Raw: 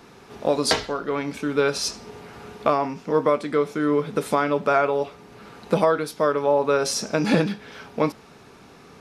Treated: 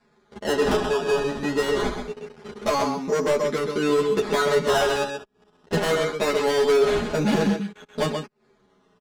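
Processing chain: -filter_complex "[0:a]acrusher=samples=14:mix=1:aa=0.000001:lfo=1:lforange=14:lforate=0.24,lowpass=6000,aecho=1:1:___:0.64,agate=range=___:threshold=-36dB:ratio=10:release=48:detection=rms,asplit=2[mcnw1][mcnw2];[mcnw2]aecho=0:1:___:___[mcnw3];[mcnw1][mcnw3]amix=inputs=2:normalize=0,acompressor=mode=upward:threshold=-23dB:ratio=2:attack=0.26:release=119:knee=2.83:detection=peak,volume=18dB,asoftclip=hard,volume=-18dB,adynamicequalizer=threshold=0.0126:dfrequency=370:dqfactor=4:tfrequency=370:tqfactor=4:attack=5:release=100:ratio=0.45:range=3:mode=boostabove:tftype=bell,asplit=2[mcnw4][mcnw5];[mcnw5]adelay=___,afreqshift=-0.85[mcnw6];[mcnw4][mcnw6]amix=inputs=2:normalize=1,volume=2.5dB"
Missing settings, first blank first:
4.8, -48dB, 131, 0.398, 9.9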